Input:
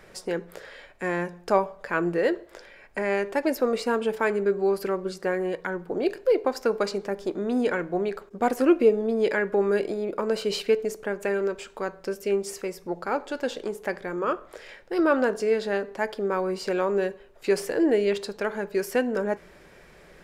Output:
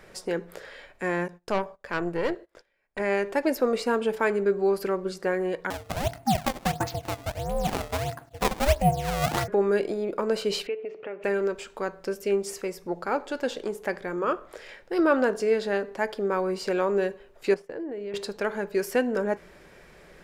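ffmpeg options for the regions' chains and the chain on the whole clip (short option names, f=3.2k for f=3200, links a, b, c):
-filter_complex "[0:a]asettb=1/sr,asplit=3[a][b][c];[a]atrim=end=1.284[d];[b]atrim=start=1.28:end=3,asetpts=PTS-STARTPTS,afade=t=in:d=0.004:c=qsin,afade=t=out:st=1.716:d=0.004:c=qsin,agate=range=-20dB:threshold=-46dB:ratio=16:release=100:detection=peak,aeval=exprs='(tanh(8.91*val(0)+0.75)-tanh(0.75))/8.91':c=same[e];[c]atrim=start=2.996[f];[d][e]acrossfade=d=0.004:c1=hsin:c2=qsin[g];[g][f]acrossfade=d=0.004:c1=qsin:c2=hsin,asettb=1/sr,asplit=3[h][i][j];[h]atrim=end=5.704[k];[i]atrim=start=5.7:end=9.48,asetpts=PTS-STARTPTS,afade=t=in:d=0.004:c=qsin,afade=t=out:st=3.776:d=0.004:c=qsin,acrusher=samples=19:mix=1:aa=0.000001:lfo=1:lforange=30.4:lforate=1.5,aeval=exprs='val(0)*sin(2*PI*280*n/s)':c=same[l];[j]atrim=start=9.476[m];[k][l]acrossfade=d=0.004:c1=hsin:c2=qsin[n];[n][m]acrossfade=d=0.004:c1=qsin:c2=hsin,asettb=1/sr,asplit=3[o][p][q];[o]atrim=end=10.674[r];[p]atrim=start=10.67:end=11.24,asetpts=PTS-STARTPTS,afade=t=in:d=0.004:c=qsin,afade=t=out:st=0.566:d=0.004:c=qsin,bandreject=f=1.6k:w=5.1,acompressor=threshold=-36dB:ratio=2:attack=3.2:release=140:knee=1:detection=peak,highpass=160,equalizer=f=210:t=q:w=4:g=-9,equalizer=f=500:t=q:w=4:g=3,equalizer=f=1k:t=q:w=4:g=-4,equalizer=f=1.6k:t=q:w=4:g=3,equalizer=f=2.6k:t=q:w=4:g=8,lowpass=f=3k:w=0.5412,lowpass=f=3k:w=1.3066[s];[q]atrim=start=11.236[t];[r][s]acrossfade=d=0.004:c1=hsin:c2=qsin[u];[u][t]acrossfade=d=0.004:c1=qsin:c2=hsin,asettb=1/sr,asplit=3[v][w][x];[v]atrim=end=17.544[y];[w]atrim=start=17.54:end=18.14,asetpts=PTS-STARTPTS,afade=t=in:d=0.004:c=qsin,afade=t=out:st=0.596:d=0.004:c=qsin,lowpass=f=1.6k:p=1,agate=range=-33dB:threshold=-27dB:ratio=3:release=100:detection=peak,acompressor=threshold=-32dB:ratio=6:attack=3.2:release=140:knee=1:detection=peak[z];[x]atrim=start=18.136[aa];[y][z]acrossfade=d=0.004:c1=hsin:c2=qsin[ab];[ab][aa]acrossfade=d=0.004:c1=qsin:c2=hsin"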